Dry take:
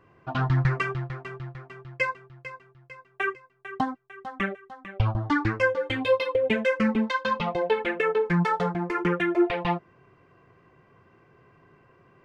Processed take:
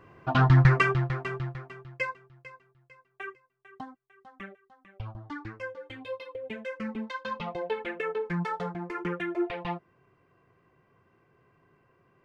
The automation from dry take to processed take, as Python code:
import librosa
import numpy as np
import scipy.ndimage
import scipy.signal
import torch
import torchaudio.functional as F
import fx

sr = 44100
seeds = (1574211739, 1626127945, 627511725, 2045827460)

y = fx.gain(x, sr, db=fx.line((1.39, 4.5), (2.01, -5.0), (3.78, -15.0), (6.39, -15.0), (7.44, -7.5)))